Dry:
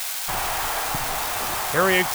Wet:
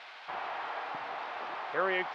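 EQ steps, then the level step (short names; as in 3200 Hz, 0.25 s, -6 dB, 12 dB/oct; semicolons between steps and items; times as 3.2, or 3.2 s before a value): BPF 370–4500 Hz; air absorption 340 m; -8.0 dB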